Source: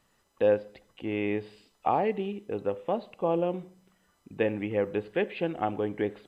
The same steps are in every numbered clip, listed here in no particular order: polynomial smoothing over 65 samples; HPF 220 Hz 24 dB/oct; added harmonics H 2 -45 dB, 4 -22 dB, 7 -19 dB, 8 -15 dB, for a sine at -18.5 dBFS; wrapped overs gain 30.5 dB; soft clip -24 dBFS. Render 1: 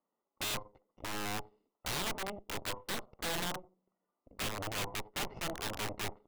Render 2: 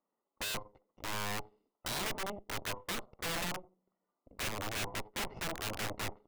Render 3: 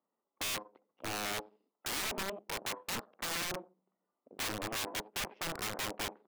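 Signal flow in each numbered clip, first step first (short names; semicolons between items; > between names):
soft clip > HPF > added harmonics > polynomial smoothing > wrapped overs; HPF > added harmonics > soft clip > polynomial smoothing > wrapped overs; polynomial smoothing > soft clip > added harmonics > HPF > wrapped overs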